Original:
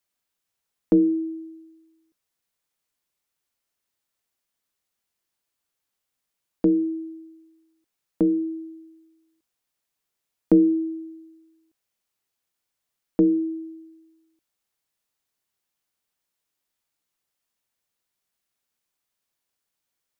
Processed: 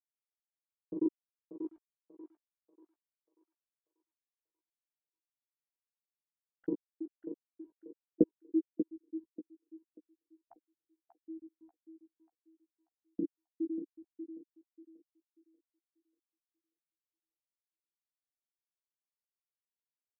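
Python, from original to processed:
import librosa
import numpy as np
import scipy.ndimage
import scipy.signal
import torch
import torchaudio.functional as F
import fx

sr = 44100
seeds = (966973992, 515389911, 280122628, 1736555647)

p1 = fx.spec_dropout(x, sr, seeds[0], share_pct=77)
p2 = fx.over_compress(p1, sr, threshold_db=-22.0, ratio=-0.5)
p3 = fx.highpass(p2, sr, hz=49.0, slope=6)
p4 = fx.quant_dither(p3, sr, seeds[1], bits=10, dither='none')
p5 = fx.chorus_voices(p4, sr, voices=2, hz=0.1, base_ms=15, depth_ms=2.5, mix_pct=35)
p6 = p5 + fx.echo_thinned(p5, sr, ms=588, feedback_pct=49, hz=510.0, wet_db=-4, dry=0)
p7 = fx.filter_sweep_lowpass(p6, sr, from_hz=940.0, to_hz=300.0, start_s=6.36, end_s=9.06, q=2.5)
y = p7 * 10.0 ** (-4.5 / 20.0)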